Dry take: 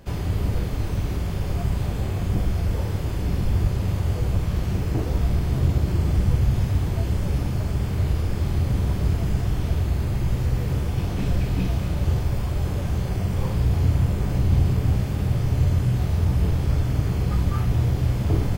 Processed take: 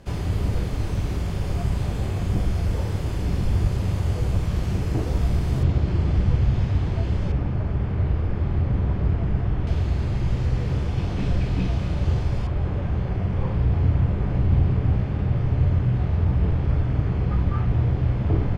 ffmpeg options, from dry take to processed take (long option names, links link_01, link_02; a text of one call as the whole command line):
ffmpeg -i in.wav -af "asetnsamples=nb_out_samples=441:pad=0,asendcmd='5.63 lowpass f 4200;7.32 lowpass f 2100;9.67 lowpass f 5300;12.47 lowpass f 2400',lowpass=11000" out.wav